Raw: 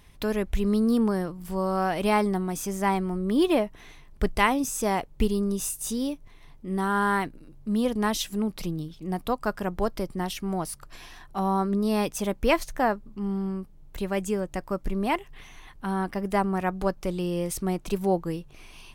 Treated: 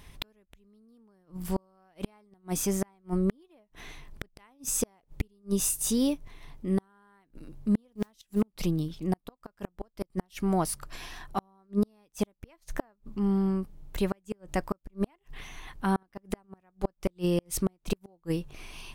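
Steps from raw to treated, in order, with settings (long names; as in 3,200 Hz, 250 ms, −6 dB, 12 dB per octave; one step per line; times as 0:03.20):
gate with flip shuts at −18 dBFS, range −40 dB
0:07.90–0:08.42: noise that follows the level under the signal 31 dB
level +3 dB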